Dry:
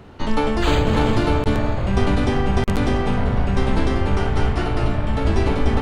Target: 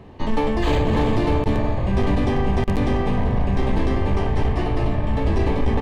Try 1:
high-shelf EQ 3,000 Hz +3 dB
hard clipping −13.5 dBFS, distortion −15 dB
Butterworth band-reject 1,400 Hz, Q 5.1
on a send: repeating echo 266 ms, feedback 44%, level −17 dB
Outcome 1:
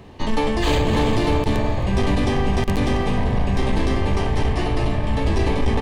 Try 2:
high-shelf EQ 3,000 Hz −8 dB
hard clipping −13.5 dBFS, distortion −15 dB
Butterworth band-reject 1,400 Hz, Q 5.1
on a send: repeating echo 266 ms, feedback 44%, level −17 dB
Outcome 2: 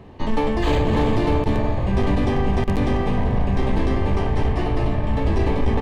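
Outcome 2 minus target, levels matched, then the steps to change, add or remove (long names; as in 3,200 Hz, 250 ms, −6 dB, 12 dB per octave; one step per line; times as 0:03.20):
echo-to-direct +8 dB
change: repeating echo 266 ms, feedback 44%, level −25 dB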